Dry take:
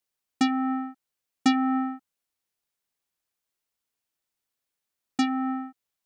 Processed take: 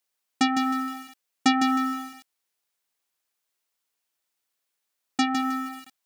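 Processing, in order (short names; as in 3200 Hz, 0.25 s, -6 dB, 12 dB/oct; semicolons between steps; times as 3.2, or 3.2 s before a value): low shelf 250 Hz -11.5 dB; lo-fi delay 0.156 s, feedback 35%, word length 7-bit, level -6 dB; gain +4.5 dB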